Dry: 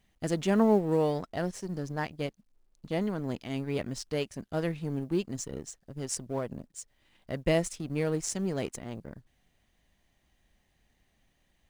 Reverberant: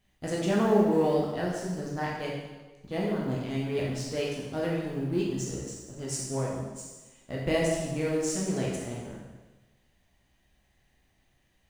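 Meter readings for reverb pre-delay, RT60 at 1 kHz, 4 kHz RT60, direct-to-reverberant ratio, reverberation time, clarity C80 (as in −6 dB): 6 ms, 1.2 s, 1.1 s, −4.5 dB, 1.2 s, 3.5 dB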